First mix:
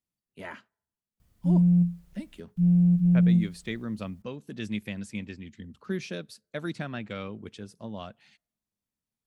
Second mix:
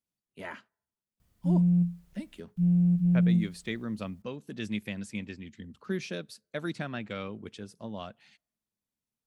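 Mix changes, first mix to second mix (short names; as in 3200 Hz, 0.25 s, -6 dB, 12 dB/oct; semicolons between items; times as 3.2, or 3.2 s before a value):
background: send -10.5 dB; master: add low shelf 130 Hz -4 dB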